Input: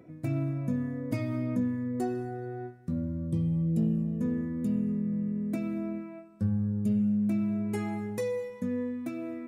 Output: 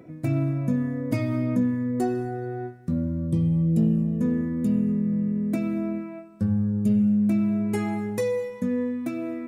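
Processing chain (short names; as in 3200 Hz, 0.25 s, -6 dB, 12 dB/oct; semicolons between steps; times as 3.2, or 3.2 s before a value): notches 50/100 Hz; gain +6 dB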